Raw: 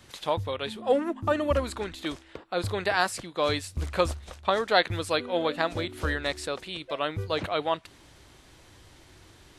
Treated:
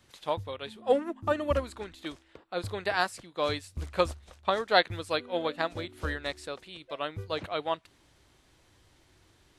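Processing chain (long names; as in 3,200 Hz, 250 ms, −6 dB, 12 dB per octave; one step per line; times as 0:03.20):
expander for the loud parts 1.5 to 1, over −36 dBFS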